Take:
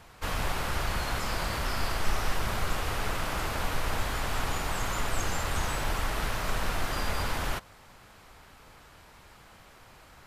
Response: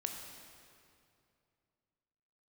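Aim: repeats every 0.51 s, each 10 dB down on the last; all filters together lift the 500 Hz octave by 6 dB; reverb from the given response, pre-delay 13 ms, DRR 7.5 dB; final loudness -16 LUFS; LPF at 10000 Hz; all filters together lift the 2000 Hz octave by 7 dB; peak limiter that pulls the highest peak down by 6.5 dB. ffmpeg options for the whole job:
-filter_complex "[0:a]lowpass=10k,equalizer=f=500:t=o:g=7,equalizer=f=2k:t=o:g=8.5,alimiter=limit=-20dB:level=0:latency=1,aecho=1:1:510|1020|1530|2040:0.316|0.101|0.0324|0.0104,asplit=2[a][b];[1:a]atrim=start_sample=2205,adelay=13[c];[b][c]afir=irnorm=-1:irlink=0,volume=-7.5dB[d];[a][d]amix=inputs=2:normalize=0,volume=13dB"

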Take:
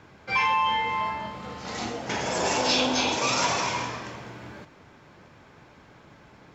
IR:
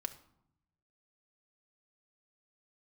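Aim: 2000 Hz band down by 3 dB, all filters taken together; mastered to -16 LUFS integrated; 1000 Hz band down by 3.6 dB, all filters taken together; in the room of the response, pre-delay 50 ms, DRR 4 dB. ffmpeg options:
-filter_complex "[0:a]equalizer=f=1k:t=o:g=-3.5,equalizer=f=2k:t=o:g=-3,asplit=2[a][b];[1:a]atrim=start_sample=2205,adelay=50[c];[b][c]afir=irnorm=-1:irlink=0,volume=-3dB[d];[a][d]amix=inputs=2:normalize=0,volume=10.5dB"

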